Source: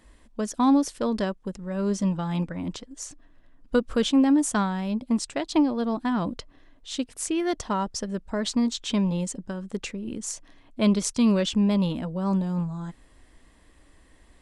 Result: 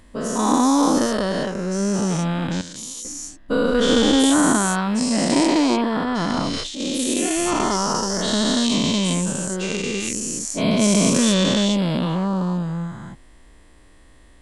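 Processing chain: spectral dilation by 0.48 s; 2.61–3.05 pre-emphasis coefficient 0.8; 6–6.93 transient shaper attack -12 dB, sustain +10 dB; gain -1 dB

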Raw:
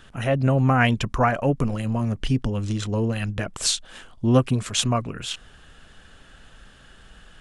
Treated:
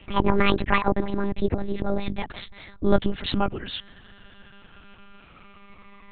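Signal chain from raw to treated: speed glide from 174% -> 68%; monotone LPC vocoder at 8 kHz 200 Hz

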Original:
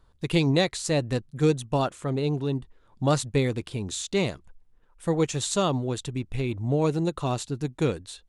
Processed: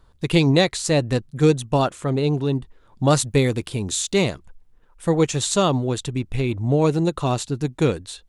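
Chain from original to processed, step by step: 3.11–4.24 high shelf 9500 Hz +10 dB; gain +5.5 dB

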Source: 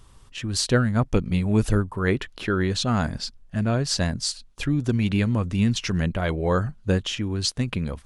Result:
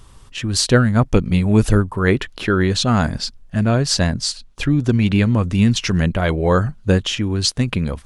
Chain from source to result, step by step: 3.99–5.39 high shelf 8900 Hz -7.5 dB; gain +6.5 dB

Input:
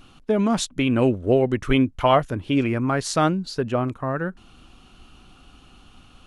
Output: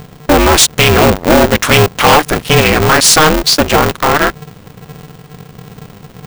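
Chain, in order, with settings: HPF 470 Hz 6 dB/oct; high shelf 2500 Hz +9.5 dB; sample leveller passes 5; in parallel at -1 dB: limiter -14.5 dBFS, peak gain reduction 11.5 dB; on the sum: added noise brown -32 dBFS; polarity switched at an audio rate 150 Hz; gain -1 dB

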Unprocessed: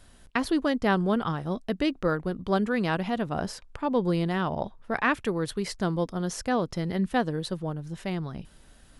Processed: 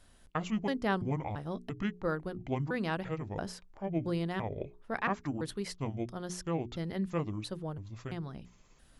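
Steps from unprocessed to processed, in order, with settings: trilling pitch shifter -7 st, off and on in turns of 0.338 s; notches 60/120/180/240/300/360/420 Hz; gain -6.5 dB

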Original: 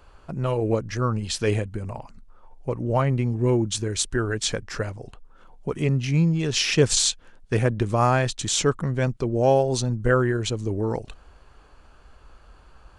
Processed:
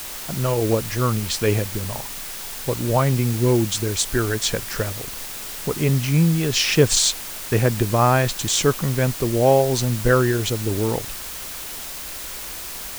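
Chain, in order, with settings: added noise white -36 dBFS; gain +3 dB

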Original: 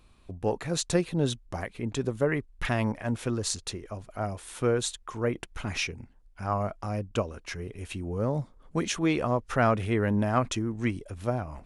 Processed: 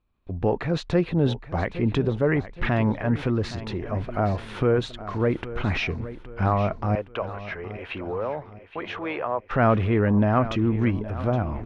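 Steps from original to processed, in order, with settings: recorder AGC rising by 15 dB/s; 6.95–9.51 three-band isolator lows -22 dB, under 470 Hz, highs -15 dB, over 3500 Hz; gate with hold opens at -43 dBFS; transient shaper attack -3 dB, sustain +3 dB; air absorption 330 m; feedback echo 0.817 s, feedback 43%, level -14.5 dB; gain +5.5 dB

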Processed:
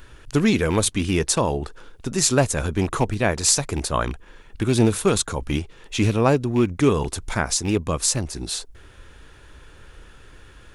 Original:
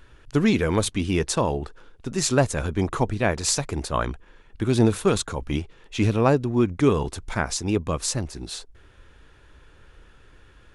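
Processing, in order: rattling part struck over -24 dBFS, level -28 dBFS; high shelf 6600 Hz +8.5 dB; in parallel at -1.5 dB: compressor, threshold -33 dBFS, peak gain reduction 18.5 dB

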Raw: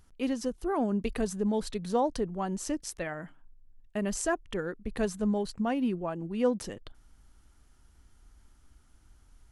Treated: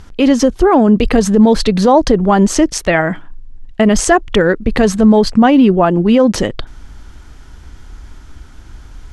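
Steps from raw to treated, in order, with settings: LPF 5500 Hz 12 dB/oct; speed mistake 24 fps film run at 25 fps; maximiser +25 dB; gain -1 dB

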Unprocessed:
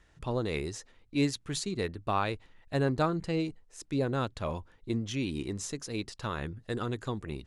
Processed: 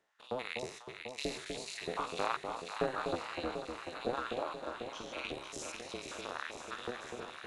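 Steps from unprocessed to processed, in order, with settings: stepped spectrum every 0.2 s; gate -43 dBFS, range -9 dB; LFO high-pass saw up 3.2 Hz 410–3700 Hz; AM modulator 250 Hz, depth 75%; on a send: echo with dull and thin repeats by turns 0.247 s, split 1000 Hz, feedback 84%, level -5 dB; on the sum: gain +1.5 dB

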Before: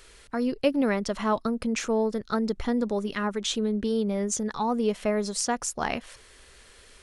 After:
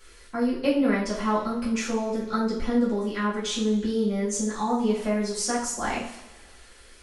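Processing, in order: two-slope reverb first 0.46 s, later 1.6 s, from -16 dB, DRR -9 dB; gain -8.5 dB

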